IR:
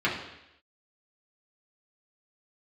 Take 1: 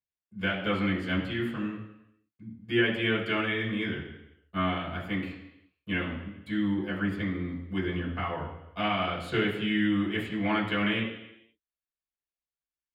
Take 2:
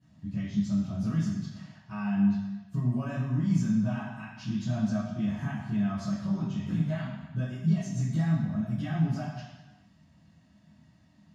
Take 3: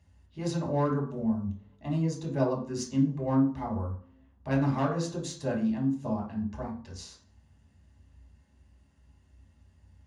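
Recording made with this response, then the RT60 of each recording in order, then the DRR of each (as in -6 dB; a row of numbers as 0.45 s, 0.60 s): 1; 0.85 s, 1.1 s, 0.50 s; -6.5 dB, -14.0 dB, -3.0 dB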